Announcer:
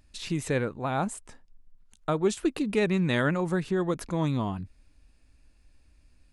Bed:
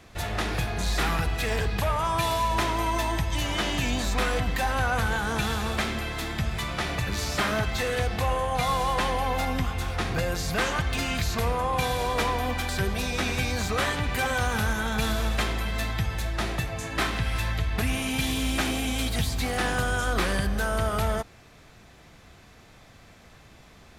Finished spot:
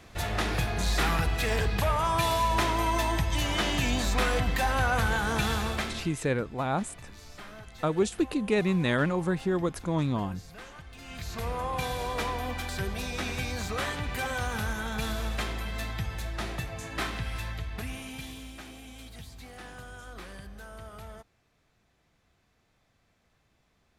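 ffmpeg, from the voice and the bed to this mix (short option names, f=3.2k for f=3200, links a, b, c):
-filter_complex "[0:a]adelay=5750,volume=-0.5dB[a];[1:a]volume=14dB,afade=t=out:st=5.57:d=0.63:silence=0.105925,afade=t=in:st=10.99:d=0.6:silence=0.188365,afade=t=out:st=17.04:d=1.52:silence=0.223872[b];[a][b]amix=inputs=2:normalize=0"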